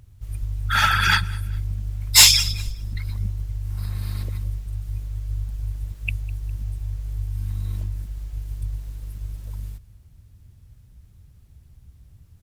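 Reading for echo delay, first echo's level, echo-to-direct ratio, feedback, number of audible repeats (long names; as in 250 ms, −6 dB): 203 ms, −22.5 dB, −22.0 dB, 35%, 2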